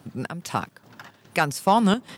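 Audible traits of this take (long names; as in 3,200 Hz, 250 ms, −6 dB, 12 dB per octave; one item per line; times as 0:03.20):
chopped level 2.4 Hz, depth 60%, duty 65%
a quantiser's noise floor 12 bits, dither triangular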